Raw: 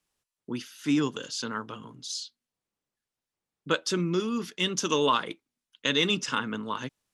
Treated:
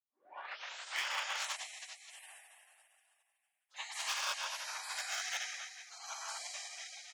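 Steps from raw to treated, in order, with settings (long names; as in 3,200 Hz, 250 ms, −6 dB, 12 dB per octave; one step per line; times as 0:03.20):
turntable start at the beginning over 1.04 s
single-tap delay 82 ms −9.5 dB
convolution reverb RT60 2.5 s, pre-delay 46 ms
gate on every frequency bin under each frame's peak −25 dB weak
in parallel at −11 dB: bit reduction 7 bits
on the sum: high-pass filter 710 Hz 24 dB per octave
high-shelf EQ 3,800 Hz −8 dB
saturating transformer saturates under 3,900 Hz
level +15.5 dB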